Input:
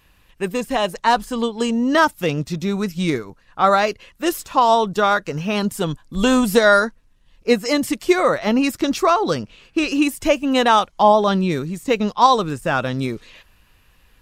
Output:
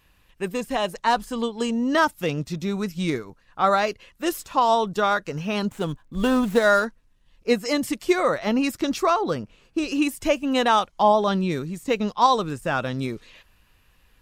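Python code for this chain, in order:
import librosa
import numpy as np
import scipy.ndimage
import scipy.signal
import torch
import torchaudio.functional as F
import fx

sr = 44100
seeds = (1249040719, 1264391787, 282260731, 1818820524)

y = fx.median_filter(x, sr, points=9, at=(5.67, 6.86))
y = fx.peak_eq(y, sr, hz=fx.line((9.21, 7300.0), (9.88, 1700.0)), db=-8.0, octaves=1.7, at=(9.21, 9.88), fade=0.02)
y = F.gain(torch.from_numpy(y), -4.5).numpy()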